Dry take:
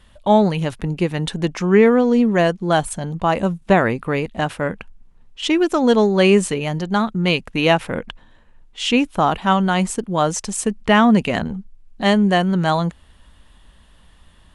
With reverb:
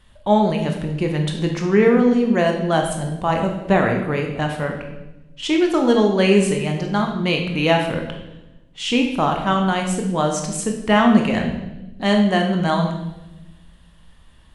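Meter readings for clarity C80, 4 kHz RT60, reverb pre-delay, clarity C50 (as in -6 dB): 8.0 dB, 0.95 s, 19 ms, 5.5 dB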